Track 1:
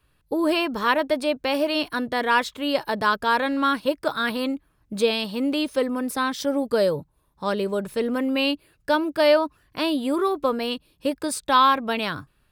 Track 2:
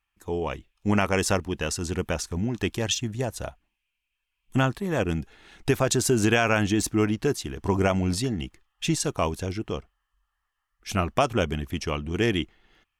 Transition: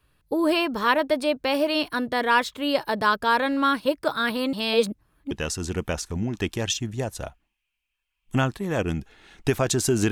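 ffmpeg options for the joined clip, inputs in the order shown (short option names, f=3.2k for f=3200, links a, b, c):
-filter_complex "[0:a]apad=whole_dur=10.11,atrim=end=10.11,asplit=2[a][b];[a]atrim=end=4.532[c];[b]atrim=start=4.528:end=5.312,asetpts=PTS-STARTPTS,areverse[d];[1:a]atrim=start=1.518:end=6.32[e];[c][d]acrossfade=d=0.004:c1=hsin:c2=hsin[f];[f][e]acrossfade=d=0.004:c1=hsin:c2=hsin"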